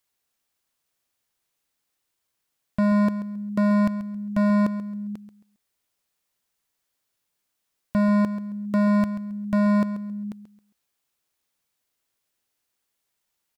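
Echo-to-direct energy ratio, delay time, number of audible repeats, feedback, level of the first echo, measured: −12.5 dB, 135 ms, 2, 27%, −13.0 dB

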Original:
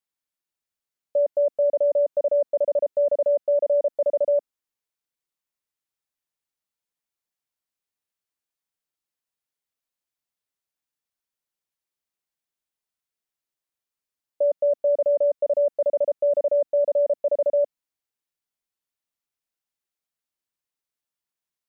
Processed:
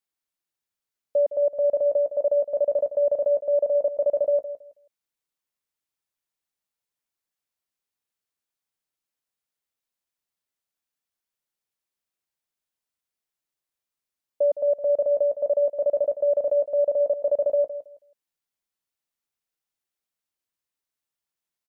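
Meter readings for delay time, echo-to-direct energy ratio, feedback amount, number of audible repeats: 162 ms, −12.5 dB, 21%, 2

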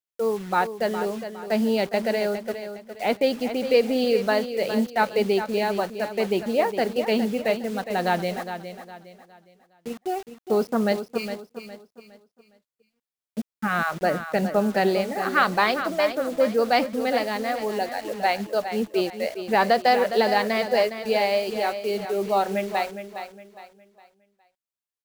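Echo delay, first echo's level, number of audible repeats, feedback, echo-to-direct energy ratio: 411 ms, −10.0 dB, 3, 34%, −9.5 dB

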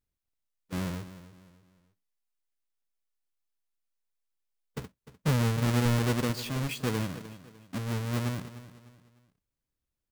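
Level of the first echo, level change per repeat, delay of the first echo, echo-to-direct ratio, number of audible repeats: −15.0 dB, −9.0 dB, 301 ms, −14.5 dB, 3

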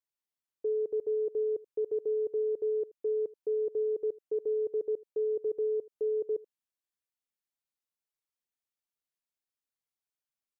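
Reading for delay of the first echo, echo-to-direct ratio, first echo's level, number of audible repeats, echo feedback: 80 ms, −21.5 dB, −21.5 dB, 1, repeats not evenly spaced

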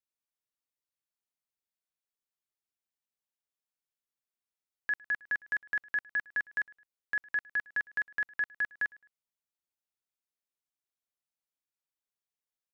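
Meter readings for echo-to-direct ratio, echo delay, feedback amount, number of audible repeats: −23.5 dB, 107 ms, 32%, 2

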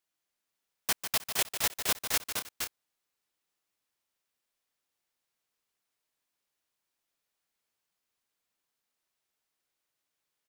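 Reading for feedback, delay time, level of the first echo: repeats not evenly spaced, 148 ms, −9.0 dB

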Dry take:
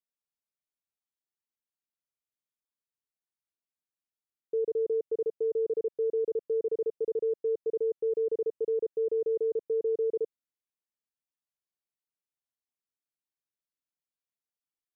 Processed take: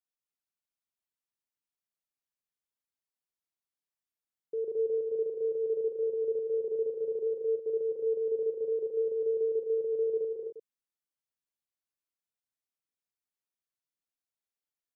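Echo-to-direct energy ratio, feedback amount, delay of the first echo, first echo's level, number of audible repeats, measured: −1.5 dB, repeats not evenly spaced, 42 ms, −9.0 dB, 3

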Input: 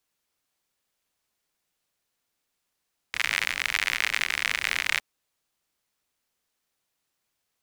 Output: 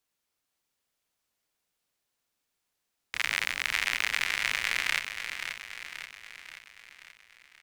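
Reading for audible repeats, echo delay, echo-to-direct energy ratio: 6, 531 ms, −6.5 dB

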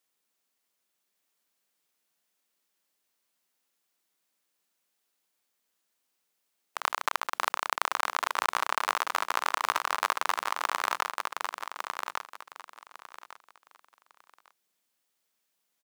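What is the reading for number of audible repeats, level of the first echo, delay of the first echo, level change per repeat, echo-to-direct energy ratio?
3, −5.0 dB, 1,152 ms, −13.0 dB, −5.0 dB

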